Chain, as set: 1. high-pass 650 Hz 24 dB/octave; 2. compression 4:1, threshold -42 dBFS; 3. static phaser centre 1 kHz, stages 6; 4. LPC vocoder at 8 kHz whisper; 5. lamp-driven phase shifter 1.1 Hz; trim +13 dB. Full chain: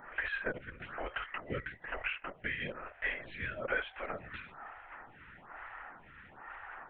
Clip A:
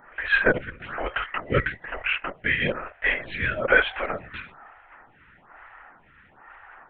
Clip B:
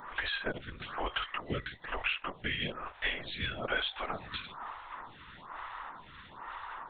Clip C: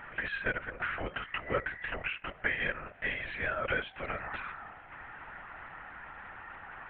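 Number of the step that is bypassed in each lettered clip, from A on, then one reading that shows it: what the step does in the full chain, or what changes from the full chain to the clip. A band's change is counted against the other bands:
2, mean gain reduction 7.0 dB; 3, 4 kHz band +8.5 dB; 5, momentary loudness spread change -2 LU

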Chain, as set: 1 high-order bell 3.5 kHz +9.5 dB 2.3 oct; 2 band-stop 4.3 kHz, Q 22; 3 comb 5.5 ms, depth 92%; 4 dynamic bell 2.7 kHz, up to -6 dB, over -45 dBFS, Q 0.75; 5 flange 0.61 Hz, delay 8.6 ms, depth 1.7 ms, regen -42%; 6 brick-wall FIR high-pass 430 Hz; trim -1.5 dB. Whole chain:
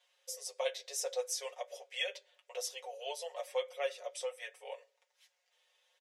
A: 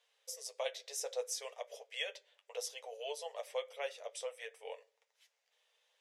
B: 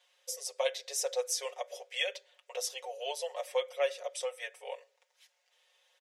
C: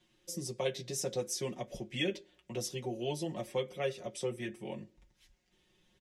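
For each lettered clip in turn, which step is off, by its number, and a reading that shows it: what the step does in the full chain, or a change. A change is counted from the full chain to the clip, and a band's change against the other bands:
3, loudness change -3.0 LU; 5, loudness change +4.0 LU; 6, 500 Hz band +2.0 dB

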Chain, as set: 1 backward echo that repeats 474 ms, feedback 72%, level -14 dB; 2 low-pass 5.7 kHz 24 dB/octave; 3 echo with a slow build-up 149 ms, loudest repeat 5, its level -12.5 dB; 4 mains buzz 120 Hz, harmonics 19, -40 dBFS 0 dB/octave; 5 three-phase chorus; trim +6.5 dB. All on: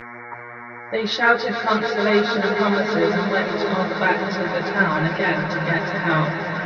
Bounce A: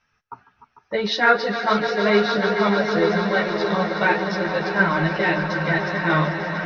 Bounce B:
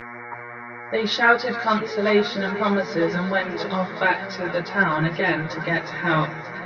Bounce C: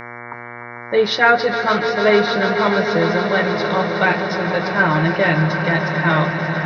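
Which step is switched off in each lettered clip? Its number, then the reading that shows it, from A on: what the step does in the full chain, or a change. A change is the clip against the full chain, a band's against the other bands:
4, momentary loudness spread change -5 LU; 3, crest factor change +1.5 dB; 5, 125 Hz band +2.5 dB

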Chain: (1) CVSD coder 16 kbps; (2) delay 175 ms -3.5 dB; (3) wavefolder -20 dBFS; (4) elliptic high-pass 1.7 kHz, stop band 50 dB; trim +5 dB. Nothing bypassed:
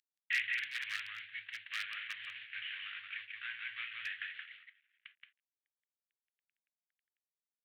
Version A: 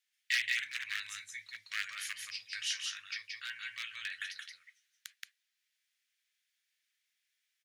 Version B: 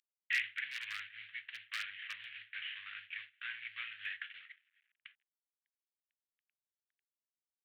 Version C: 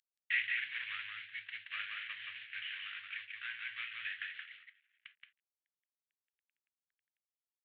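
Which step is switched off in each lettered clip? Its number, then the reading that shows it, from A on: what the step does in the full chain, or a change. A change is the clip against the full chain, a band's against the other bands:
1, momentary loudness spread change +7 LU; 2, momentary loudness spread change +12 LU; 3, distortion -19 dB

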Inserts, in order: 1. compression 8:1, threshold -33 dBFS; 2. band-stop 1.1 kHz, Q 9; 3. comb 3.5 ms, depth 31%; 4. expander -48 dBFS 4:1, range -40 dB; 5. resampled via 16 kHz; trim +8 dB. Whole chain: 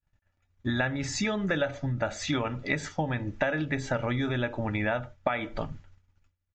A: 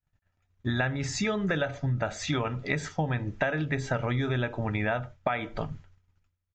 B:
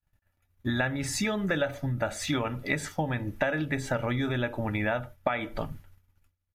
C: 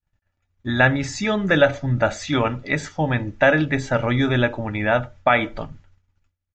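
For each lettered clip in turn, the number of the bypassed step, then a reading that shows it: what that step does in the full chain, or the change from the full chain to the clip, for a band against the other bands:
3, crest factor change -2.0 dB; 5, 8 kHz band +2.0 dB; 1, mean gain reduction 6.5 dB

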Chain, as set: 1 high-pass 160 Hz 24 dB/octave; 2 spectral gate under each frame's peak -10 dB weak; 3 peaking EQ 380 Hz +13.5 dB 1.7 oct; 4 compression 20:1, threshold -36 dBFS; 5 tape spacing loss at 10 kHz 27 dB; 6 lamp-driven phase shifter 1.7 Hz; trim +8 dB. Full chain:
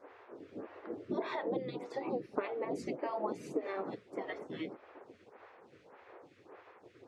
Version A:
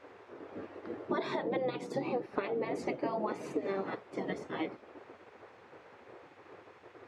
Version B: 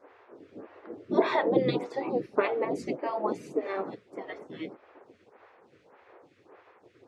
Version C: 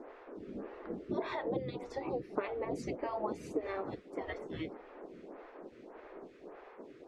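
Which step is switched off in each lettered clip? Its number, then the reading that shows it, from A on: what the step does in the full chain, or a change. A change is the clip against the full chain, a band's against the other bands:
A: 6, loudness change +3.0 LU; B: 4, mean gain reduction 3.5 dB; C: 1, 125 Hz band +4.5 dB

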